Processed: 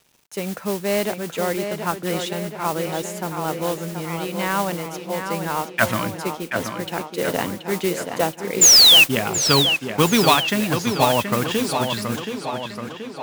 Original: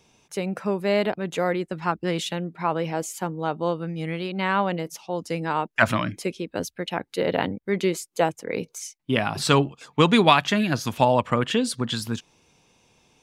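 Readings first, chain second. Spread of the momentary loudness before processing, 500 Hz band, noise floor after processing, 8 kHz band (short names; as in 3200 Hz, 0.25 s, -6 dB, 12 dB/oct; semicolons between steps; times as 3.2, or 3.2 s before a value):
11 LU, +1.5 dB, -39 dBFS, +17.0 dB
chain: painted sound fall, 8.61–9.04, 2500–7400 Hz -10 dBFS; modulation noise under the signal 11 dB; bit-crush 9-bit; on a send: tape echo 0.727 s, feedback 65%, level -6 dB, low-pass 4200 Hz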